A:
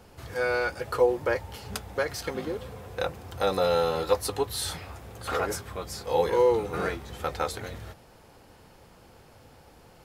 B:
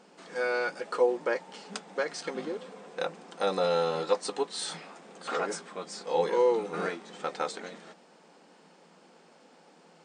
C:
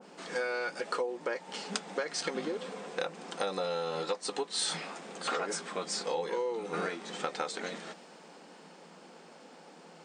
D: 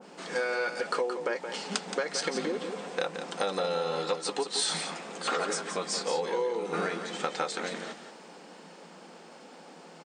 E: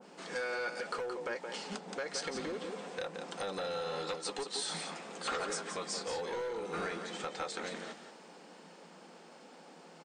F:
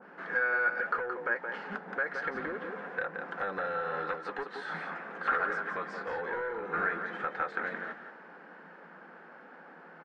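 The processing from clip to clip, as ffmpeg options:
ffmpeg -i in.wav -af "afftfilt=real='re*between(b*sr/4096,160,9200)':imag='im*between(b*sr/4096,160,9200)':win_size=4096:overlap=0.75,volume=-2.5dB" out.wav
ffmpeg -i in.wav -af "acompressor=threshold=-35dB:ratio=8,adynamicequalizer=threshold=0.00178:dfrequency=1600:dqfactor=0.7:tfrequency=1600:tqfactor=0.7:attack=5:release=100:ratio=0.375:range=1.5:mode=boostabove:tftype=highshelf,volume=4.5dB" out.wav
ffmpeg -i in.wav -af "aecho=1:1:173:0.376,volume=3dB" out.wav
ffmpeg -i in.wav -filter_complex "[0:a]acrossover=split=1100[link_01][link_02];[link_01]asoftclip=type=hard:threshold=-30.5dB[link_03];[link_02]alimiter=limit=-22dB:level=0:latency=1:release=384[link_04];[link_03][link_04]amix=inputs=2:normalize=0,volume=-5dB" out.wav
ffmpeg -i in.wav -af "lowpass=frequency=1600:width_type=q:width=4.6" out.wav

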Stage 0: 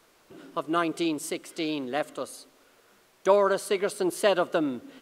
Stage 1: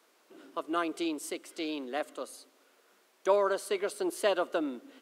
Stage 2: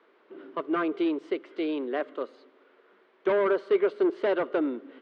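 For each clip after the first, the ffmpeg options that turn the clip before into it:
ffmpeg -i in.wav -af "highpass=frequency=240:width=0.5412,highpass=frequency=240:width=1.3066,volume=-5dB" out.wav
ffmpeg -i in.wav -af "asoftclip=type=hard:threshold=-27.5dB,highpass=120,equalizer=frequency=400:width_type=q:width=4:gain=7,equalizer=frequency=740:width_type=q:width=4:gain=-4,equalizer=frequency=2600:width_type=q:width=4:gain=-5,lowpass=frequency=2900:width=0.5412,lowpass=frequency=2900:width=1.3066,volume=5dB" out.wav

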